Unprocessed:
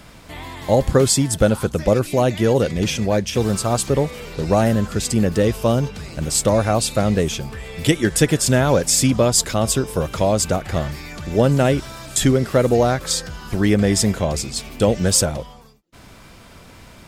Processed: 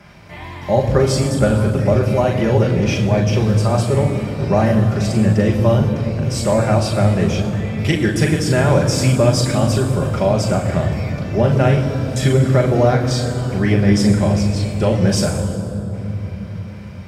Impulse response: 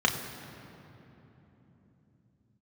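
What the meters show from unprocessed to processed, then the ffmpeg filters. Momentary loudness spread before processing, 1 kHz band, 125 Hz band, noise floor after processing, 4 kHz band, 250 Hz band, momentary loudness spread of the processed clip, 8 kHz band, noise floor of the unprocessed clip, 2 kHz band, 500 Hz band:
9 LU, +1.5 dB, +6.0 dB, -32 dBFS, -2.0 dB, +3.0 dB, 8 LU, -8.0 dB, -44 dBFS, +2.0 dB, +1.0 dB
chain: -filter_complex "[1:a]atrim=start_sample=2205,asetrate=34839,aresample=44100[a];[0:a][a]afir=irnorm=-1:irlink=0,volume=-13.5dB"

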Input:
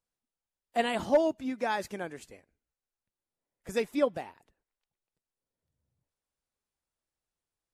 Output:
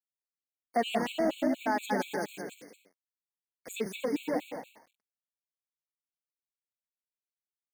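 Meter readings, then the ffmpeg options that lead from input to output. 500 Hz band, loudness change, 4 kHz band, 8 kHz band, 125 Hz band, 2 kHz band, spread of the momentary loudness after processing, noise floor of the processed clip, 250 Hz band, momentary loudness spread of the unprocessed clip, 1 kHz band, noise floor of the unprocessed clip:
-3.0 dB, -1.5 dB, +1.0 dB, +3.5 dB, +1.5 dB, +0.5 dB, 14 LU, under -85 dBFS, +2.0 dB, 15 LU, +1.0 dB, under -85 dBFS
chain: -filter_complex "[0:a]asoftclip=type=tanh:threshold=-23.5dB,asplit=2[a][b];[b]aecho=0:1:183:0.0794[c];[a][c]amix=inputs=2:normalize=0,acrusher=bits=8:mix=0:aa=0.000001,lowshelf=f=140:t=q:w=1.5:g=-14,asplit=2[d][e];[e]aecho=0:1:170|297.5|393.1|464.8|518.6:0.631|0.398|0.251|0.158|0.1[f];[d][f]amix=inputs=2:normalize=0,acompressor=threshold=-29dB:ratio=6,afftfilt=real='re*gt(sin(2*PI*4.2*pts/sr)*(1-2*mod(floor(b*sr/1024/2200),2)),0)':imag='im*gt(sin(2*PI*4.2*pts/sr)*(1-2*mod(floor(b*sr/1024/2200),2)),0)':win_size=1024:overlap=0.75,volume=6dB"

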